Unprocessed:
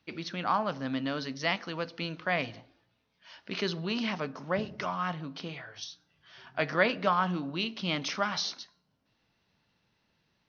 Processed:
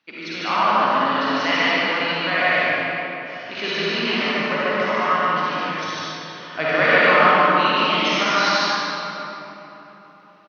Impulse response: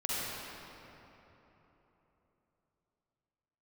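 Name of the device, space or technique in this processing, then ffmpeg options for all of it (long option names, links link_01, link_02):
stadium PA: -filter_complex "[0:a]asettb=1/sr,asplit=3[link_01][link_02][link_03];[link_01]atrim=end=5.624[link_04];[link_02]atrim=start=5.62:end=6.73,asetpts=PTS-STARTPTS,afade=type=in:duration=0.004:curve=qsin,afade=type=out:start_time=1.106:duration=0.004:curve=qsin,equalizer=frequency=140:width_type=o:width=3:gain=8.5[link_05];[link_03]atrim=start=6.726[link_06];[link_04][link_05]acrossfade=duration=0.004:curve1=hsin:curve2=qsin[link_07];[link_07][link_06]acrossfade=duration=0.004:curve1=qsin:curve2=hsin,highpass=220,equalizer=frequency=1800:width_type=o:width=2.2:gain=7,aecho=1:1:148.7|230.3:0.891|0.282[link_08];[1:a]atrim=start_sample=2205[link_09];[link_08][link_09]afir=irnorm=-1:irlink=0"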